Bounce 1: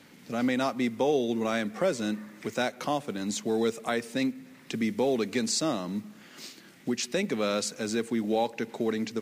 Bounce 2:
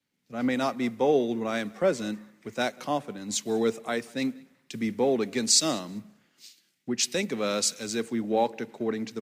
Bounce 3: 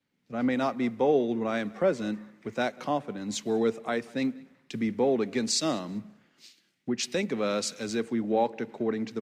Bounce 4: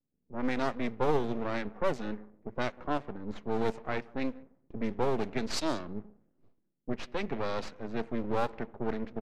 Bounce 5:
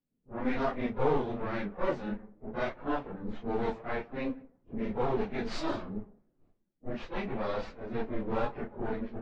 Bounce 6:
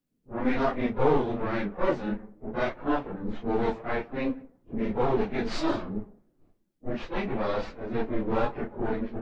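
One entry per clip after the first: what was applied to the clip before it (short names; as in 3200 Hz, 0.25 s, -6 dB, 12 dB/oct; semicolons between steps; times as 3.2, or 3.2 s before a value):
feedback echo 0.195 s, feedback 38%, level -22.5 dB; three-band expander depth 100%
LPF 2600 Hz 6 dB/oct; in parallel at -1.5 dB: compressor, threshold -34 dBFS, peak gain reduction 15 dB; on the sum: gain -2 dB
half-wave rectifier; low-pass opened by the level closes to 400 Hz, open at -23 dBFS
phase scrambler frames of 0.1 s; Bessel low-pass 3100 Hz, order 2
bell 320 Hz +3.5 dB 0.27 oct; gain +4.5 dB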